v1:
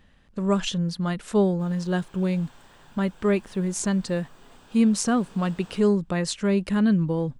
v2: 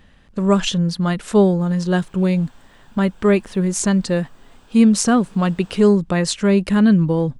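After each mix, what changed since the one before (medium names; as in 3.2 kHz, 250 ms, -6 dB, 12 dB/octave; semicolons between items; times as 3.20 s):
speech +7.0 dB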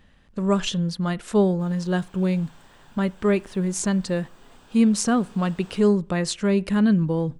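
speech -6.0 dB; reverb: on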